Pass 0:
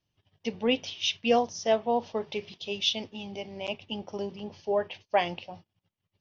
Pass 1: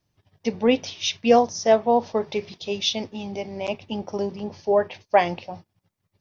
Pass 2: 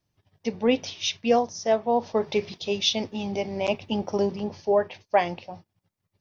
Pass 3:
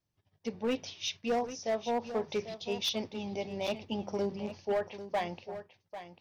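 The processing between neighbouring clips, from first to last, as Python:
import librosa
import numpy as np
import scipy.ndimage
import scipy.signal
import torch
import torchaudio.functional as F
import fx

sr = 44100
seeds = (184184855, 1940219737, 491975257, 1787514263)

y1 = fx.peak_eq(x, sr, hz=3000.0, db=-9.5, octaves=0.46)
y1 = y1 * 10.0 ** (7.5 / 20.0)
y2 = fx.rider(y1, sr, range_db=4, speed_s=0.5)
y2 = y2 * 10.0 ** (-1.5 / 20.0)
y3 = np.clip(10.0 ** (17.5 / 20.0) * y2, -1.0, 1.0) / 10.0 ** (17.5 / 20.0)
y3 = y3 + 10.0 ** (-12.0 / 20.0) * np.pad(y3, (int(795 * sr / 1000.0), 0))[:len(y3)]
y3 = y3 * 10.0 ** (-8.0 / 20.0)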